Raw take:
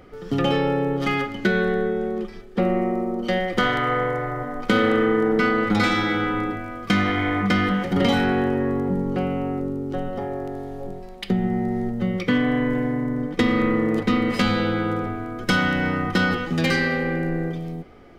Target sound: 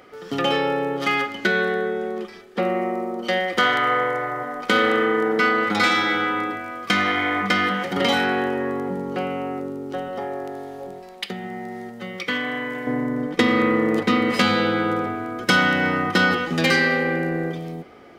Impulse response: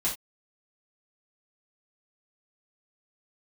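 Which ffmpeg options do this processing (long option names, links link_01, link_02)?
-af "asetnsamples=nb_out_samples=441:pad=0,asendcmd='11.26 highpass f 1400;12.87 highpass f 320',highpass=frequency=660:poles=1,volume=4.5dB"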